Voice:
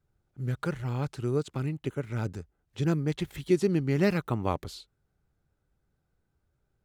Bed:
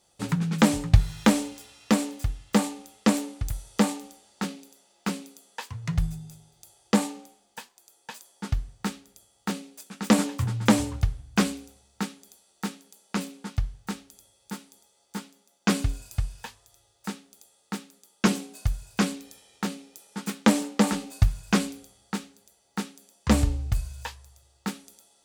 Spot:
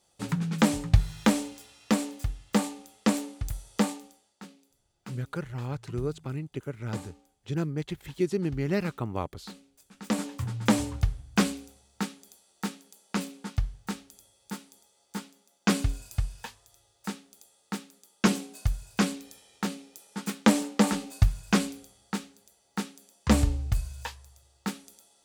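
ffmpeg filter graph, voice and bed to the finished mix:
-filter_complex "[0:a]adelay=4700,volume=0.708[s0];[1:a]volume=3.76,afade=t=out:st=3.79:d=0.59:silence=0.237137,afade=t=in:st=9.76:d=1.34:silence=0.188365[s1];[s0][s1]amix=inputs=2:normalize=0"

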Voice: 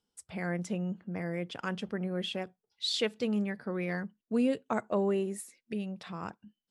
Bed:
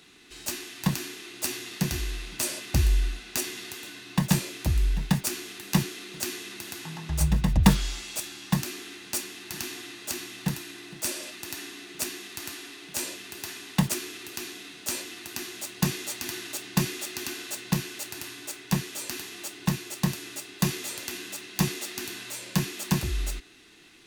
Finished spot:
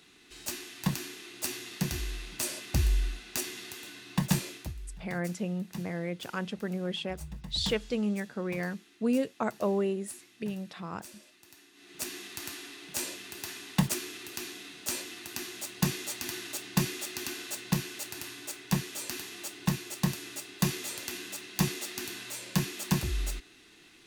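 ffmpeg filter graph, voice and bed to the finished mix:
-filter_complex "[0:a]adelay=4700,volume=1.06[s0];[1:a]volume=4.22,afade=t=out:st=4.49:d=0.25:silence=0.177828,afade=t=in:st=11.73:d=0.45:silence=0.149624[s1];[s0][s1]amix=inputs=2:normalize=0"

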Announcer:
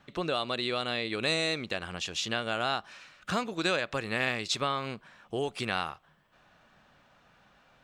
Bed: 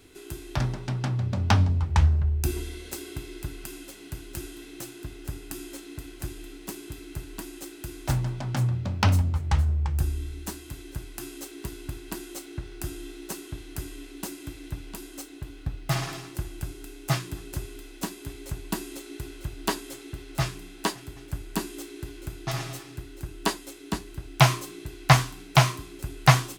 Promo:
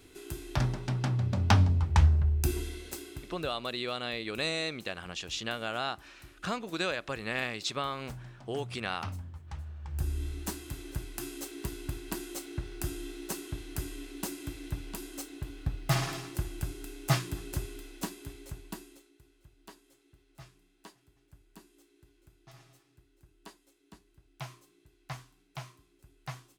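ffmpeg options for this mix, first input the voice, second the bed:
-filter_complex "[0:a]adelay=3150,volume=0.668[s0];[1:a]volume=5.96,afade=t=out:st=2.66:d=0.96:silence=0.149624,afade=t=in:st=9.82:d=0.44:silence=0.133352,afade=t=out:st=17.54:d=1.58:silence=0.0668344[s1];[s0][s1]amix=inputs=2:normalize=0"

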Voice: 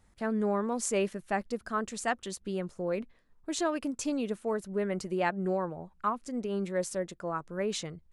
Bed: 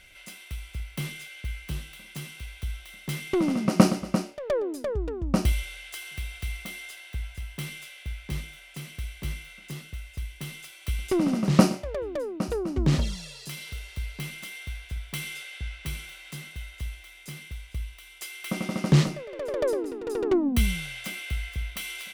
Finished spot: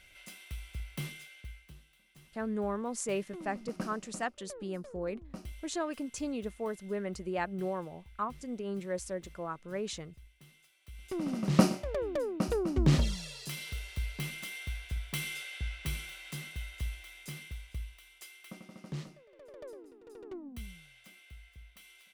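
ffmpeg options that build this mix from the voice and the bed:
-filter_complex "[0:a]adelay=2150,volume=0.596[s0];[1:a]volume=4.73,afade=t=out:st=0.97:d=0.77:silence=0.16788,afade=t=in:st=10.91:d=1.08:silence=0.112202,afade=t=out:st=17.12:d=1.51:silence=0.112202[s1];[s0][s1]amix=inputs=2:normalize=0"

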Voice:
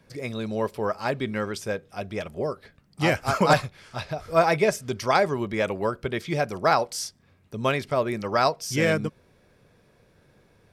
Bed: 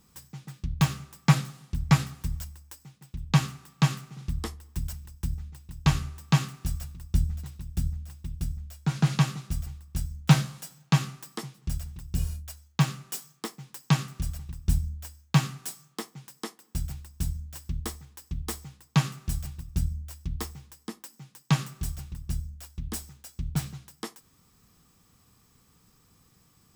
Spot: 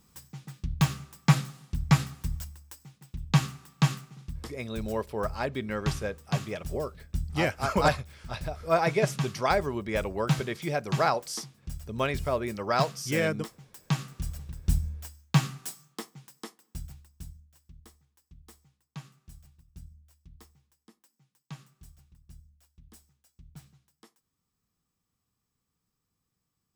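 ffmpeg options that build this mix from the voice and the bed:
-filter_complex "[0:a]adelay=4350,volume=0.596[s0];[1:a]volume=1.88,afade=t=out:st=3.9:d=0.37:silence=0.473151,afade=t=in:st=13.65:d=0.96:silence=0.473151,afade=t=out:st=15.57:d=1.93:silence=0.112202[s1];[s0][s1]amix=inputs=2:normalize=0"

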